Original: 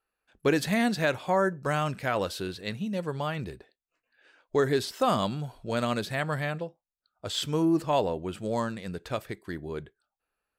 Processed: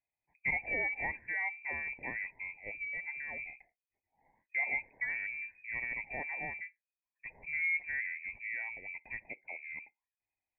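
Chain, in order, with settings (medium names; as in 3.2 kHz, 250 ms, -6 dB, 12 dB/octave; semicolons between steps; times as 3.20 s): frequency inversion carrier 2.5 kHz; Butterworth band-stop 1.3 kHz, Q 1.1; trim -7 dB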